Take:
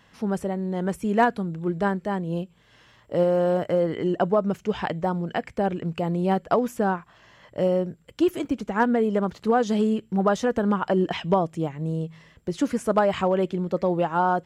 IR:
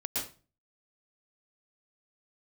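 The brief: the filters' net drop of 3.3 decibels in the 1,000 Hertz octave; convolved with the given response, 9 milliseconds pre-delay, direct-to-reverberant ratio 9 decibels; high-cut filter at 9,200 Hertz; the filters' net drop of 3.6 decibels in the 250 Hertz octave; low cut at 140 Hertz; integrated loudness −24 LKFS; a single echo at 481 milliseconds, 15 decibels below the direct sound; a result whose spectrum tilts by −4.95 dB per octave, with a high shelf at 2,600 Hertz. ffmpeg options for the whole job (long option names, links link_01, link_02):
-filter_complex "[0:a]highpass=140,lowpass=9200,equalizer=frequency=250:width_type=o:gain=-4,equalizer=frequency=1000:width_type=o:gain=-5,highshelf=frequency=2600:gain=4.5,aecho=1:1:481:0.178,asplit=2[link_01][link_02];[1:a]atrim=start_sample=2205,adelay=9[link_03];[link_02][link_03]afir=irnorm=-1:irlink=0,volume=-13.5dB[link_04];[link_01][link_04]amix=inputs=2:normalize=0,volume=2.5dB"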